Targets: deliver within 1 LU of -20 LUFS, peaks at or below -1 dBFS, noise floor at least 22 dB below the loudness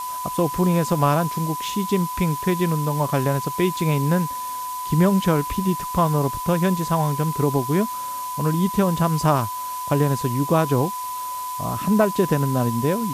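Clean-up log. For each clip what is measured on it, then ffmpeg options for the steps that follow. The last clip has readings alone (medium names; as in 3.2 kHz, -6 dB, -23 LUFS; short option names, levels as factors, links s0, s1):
steady tone 1 kHz; tone level -27 dBFS; noise floor -29 dBFS; noise floor target -44 dBFS; loudness -22.0 LUFS; peak level -6.5 dBFS; loudness target -20.0 LUFS
-> -af "bandreject=f=1000:w=30"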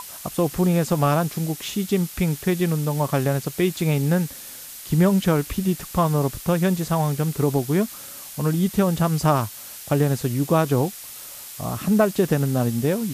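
steady tone not found; noise floor -39 dBFS; noise floor target -45 dBFS
-> -af "afftdn=nr=6:nf=-39"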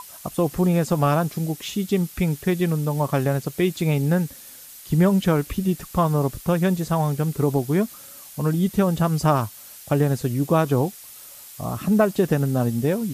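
noise floor -43 dBFS; noise floor target -45 dBFS
-> -af "afftdn=nr=6:nf=-43"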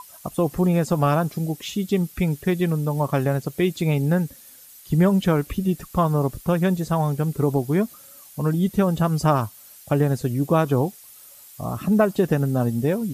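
noise floor -47 dBFS; loudness -22.5 LUFS; peak level -6.5 dBFS; loudness target -20.0 LUFS
-> -af "volume=1.33"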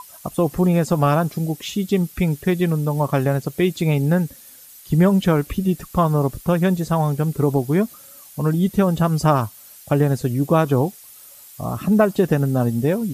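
loudness -20.0 LUFS; peak level -4.0 dBFS; noise floor -44 dBFS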